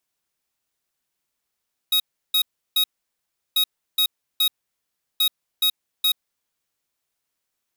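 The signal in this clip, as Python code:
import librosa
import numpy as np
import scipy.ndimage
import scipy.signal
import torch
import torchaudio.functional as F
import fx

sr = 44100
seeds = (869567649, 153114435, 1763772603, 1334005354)

y = fx.beep_pattern(sr, wave='square', hz=3780.0, on_s=0.08, off_s=0.34, beeps=3, pause_s=0.72, groups=3, level_db=-18.5)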